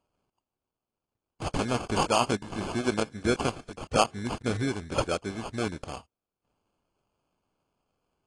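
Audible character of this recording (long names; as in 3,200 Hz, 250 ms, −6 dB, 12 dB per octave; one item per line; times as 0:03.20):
aliases and images of a low sample rate 1,900 Hz, jitter 0%
AAC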